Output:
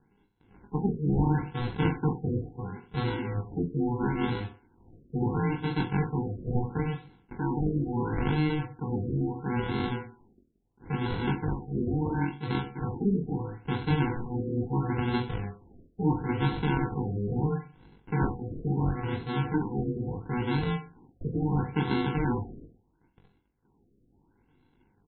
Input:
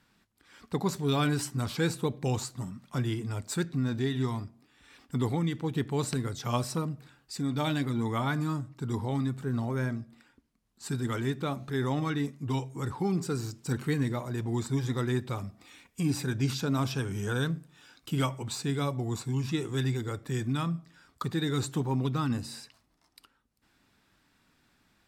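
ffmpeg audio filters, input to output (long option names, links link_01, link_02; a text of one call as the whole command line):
ffmpeg -i in.wav -af "aresample=11025,acrusher=samples=18:mix=1:aa=0.000001,aresample=44100,aecho=1:1:20|42|66.2|92.82|122.1:0.631|0.398|0.251|0.158|0.1,afftfilt=real='re*lt(b*sr/1024,670*pow(4300/670,0.5+0.5*sin(2*PI*0.74*pts/sr)))':imag='im*lt(b*sr/1024,670*pow(4300/670,0.5+0.5*sin(2*PI*0.74*pts/sr)))':win_size=1024:overlap=0.75" out.wav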